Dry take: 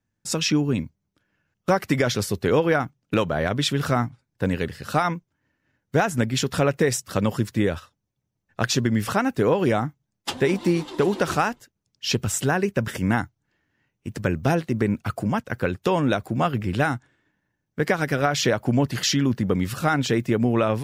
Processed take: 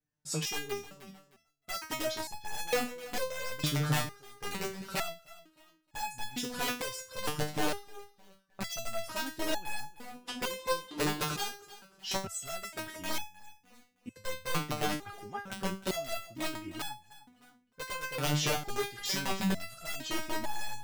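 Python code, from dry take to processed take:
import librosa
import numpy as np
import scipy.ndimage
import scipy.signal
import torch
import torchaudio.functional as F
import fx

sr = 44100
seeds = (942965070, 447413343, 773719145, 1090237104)

y = (np.mod(10.0 ** (13.5 / 20.0) * x + 1.0, 2.0) - 1.0) / 10.0 ** (13.5 / 20.0)
y = fx.echo_feedback(y, sr, ms=308, feedback_pct=26, wet_db=-16.0)
y = fx.resonator_held(y, sr, hz=2.2, low_hz=150.0, high_hz=850.0)
y = y * 10.0 ** (3.0 / 20.0)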